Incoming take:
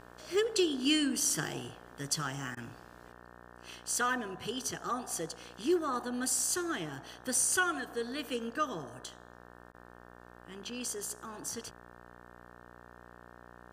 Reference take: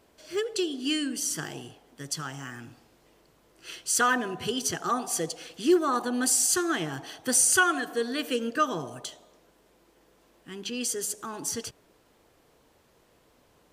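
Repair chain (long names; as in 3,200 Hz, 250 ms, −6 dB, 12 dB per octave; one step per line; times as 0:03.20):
hum removal 60.1 Hz, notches 30
repair the gap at 0:02.55/0:09.72, 18 ms
level 0 dB, from 0:03.12 +7.5 dB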